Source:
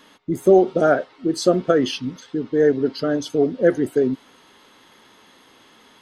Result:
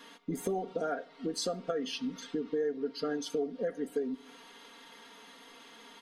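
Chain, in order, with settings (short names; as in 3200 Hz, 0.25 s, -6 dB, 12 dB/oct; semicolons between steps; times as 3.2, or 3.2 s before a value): bell 67 Hz -13 dB 2.4 oct; comb 4.3 ms, depth 81%; compressor 6:1, threshold -28 dBFS, peak gain reduction 17.5 dB; shoebox room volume 2200 m³, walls furnished, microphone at 0.37 m; gain -3.5 dB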